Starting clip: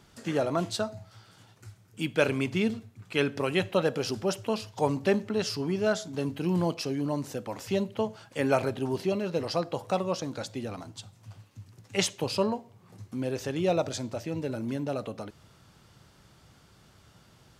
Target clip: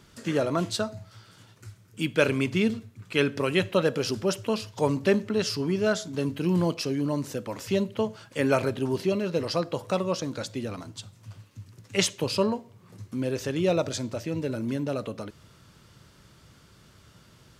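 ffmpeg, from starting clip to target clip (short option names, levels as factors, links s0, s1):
-af "equalizer=f=770:w=4.1:g=-8,volume=1.41"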